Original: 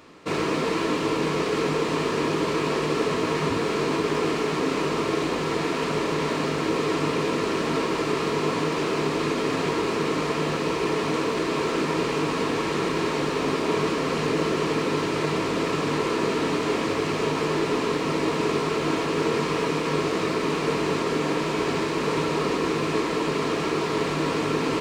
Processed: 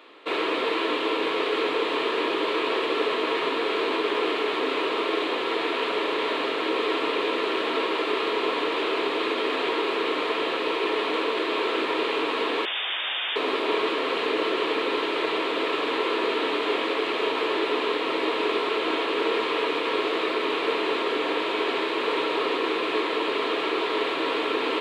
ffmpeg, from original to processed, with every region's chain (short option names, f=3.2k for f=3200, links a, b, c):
-filter_complex "[0:a]asettb=1/sr,asplit=3[a][b][c];[a]atrim=end=12.654[d];[b]atrim=start=12.65:end=13.36,asetpts=PTS-STARTPTS,afade=t=in:d=0.004:c=qsin,afade=t=out:st=0.706:d=0.004:c=qsin,aeval=exprs='0.0266*(abs(mod(val(0)/0.0266+3,4)-2)-1)':c=same,acontrast=48,lowpass=f=3.1k:t=q:w=0.5098,lowpass=f=3.1k:t=q:w=0.6013,lowpass=f=3.1k:t=q:w=0.9,lowpass=f=3.1k:t=q:w=2.563,afreqshift=-3700[e];[c]atrim=start=13.356[f];[d][e]acrossfade=d=0.004:c1=hsin:c2=qsin[g];[g][f]acrossfade=d=0.004:c1=qsin:c2=hsin,highpass=f=330:w=0.5412,highpass=f=330:w=1.3066,highshelf=f=4.5k:t=q:w=3:g=-8.5"